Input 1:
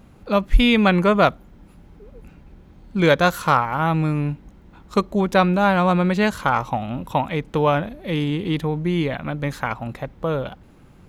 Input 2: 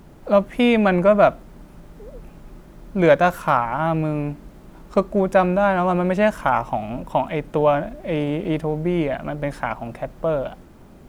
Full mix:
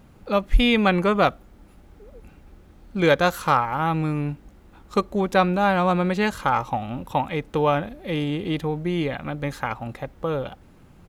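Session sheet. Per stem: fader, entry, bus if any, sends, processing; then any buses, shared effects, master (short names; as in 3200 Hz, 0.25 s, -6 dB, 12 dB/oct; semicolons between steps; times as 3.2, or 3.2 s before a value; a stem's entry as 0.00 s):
-2.5 dB, 0.00 s, no send, dry
-9.0 dB, 2.5 ms, no send, bell 370 Hz -13 dB 1.5 oct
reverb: off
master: dry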